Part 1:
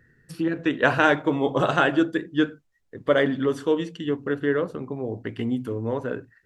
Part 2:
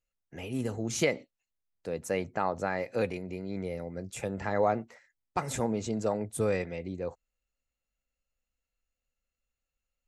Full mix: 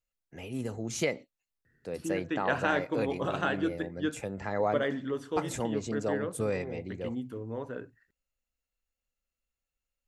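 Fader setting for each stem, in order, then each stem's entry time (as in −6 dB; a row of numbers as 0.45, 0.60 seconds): −10.0, −2.5 decibels; 1.65, 0.00 seconds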